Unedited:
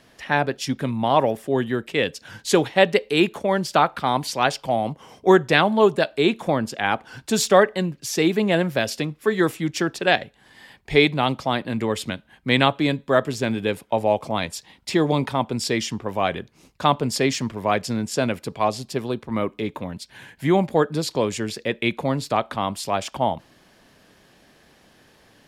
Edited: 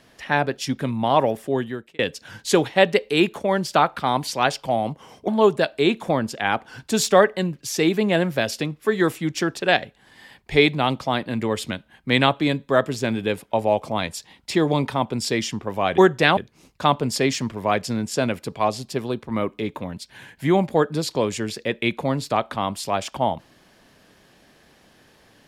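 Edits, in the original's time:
0:01.48–0:01.99: fade out
0:05.28–0:05.67: move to 0:16.37

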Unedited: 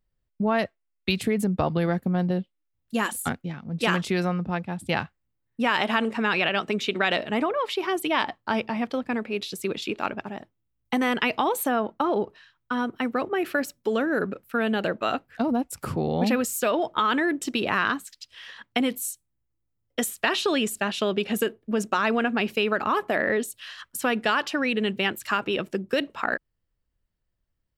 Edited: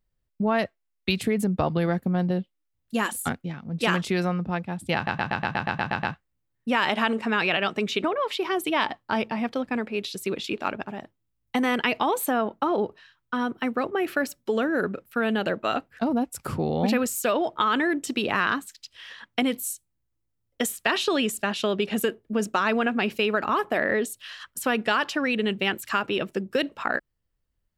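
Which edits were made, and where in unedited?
0:04.95: stutter 0.12 s, 10 plays
0:06.96–0:07.42: remove

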